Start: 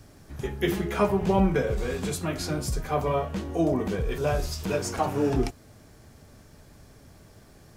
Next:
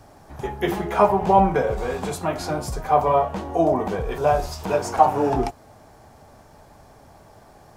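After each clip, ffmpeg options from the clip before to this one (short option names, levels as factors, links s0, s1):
-af "equalizer=f=820:w=1.2:g=15,volume=0.891"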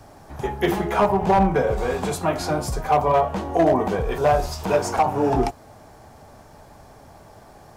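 -filter_complex "[0:a]acrossover=split=320[s0][s1];[s1]alimiter=limit=0.335:level=0:latency=1:release=424[s2];[s0][s2]amix=inputs=2:normalize=0,asoftclip=type=hard:threshold=0.211,volume=1.33"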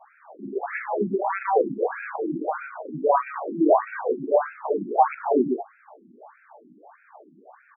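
-filter_complex "[0:a]asplit=2[s0][s1];[s1]aecho=0:1:119:0.631[s2];[s0][s2]amix=inputs=2:normalize=0,afftfilt=real='re*between(b*sr/1024,240*pow(1900/240,0.5+0.5*sin(2*PI*1.6*pts/sr))/1.41,240*pow(1900/240,0.5+0.5*sin(2*PI*1.6*pts/sr))*1.41)':imag='im*between(b*sr/1024,240*pow(1900/240,0.5+0.5*sin(2*PI*1.6*pts/sr))/1.41,240*pow(1900/240,0.5+0.5*sin(2*PI*1.6*pts/sr))*1.41)':win_size=1024:overlap=0.75,volume=1.33"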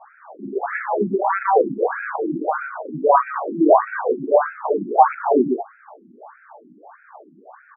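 -af "lowpass=f=1500:t=q:w=1.6,volume=1.5"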